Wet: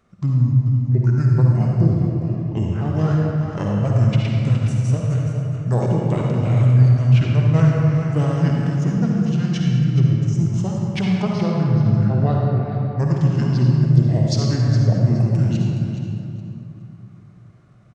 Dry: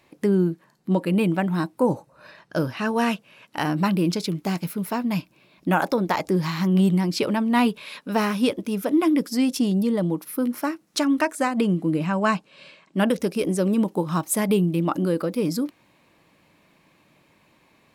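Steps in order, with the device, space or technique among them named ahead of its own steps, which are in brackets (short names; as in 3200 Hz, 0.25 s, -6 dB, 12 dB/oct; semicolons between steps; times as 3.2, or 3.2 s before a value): 9.88–10.56 de-hum 148.3 Hz, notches 2; feedback echo 0.418 s, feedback 22%, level -9.5 dB; monster voice (pitch shift -7 st; formant shift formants -3.5 st; low shelf 220 Hz +8 dB; reverb RT60 2.7 s, pre-delay 48 ms, DRR -1.5 dB); gain -4.5 dB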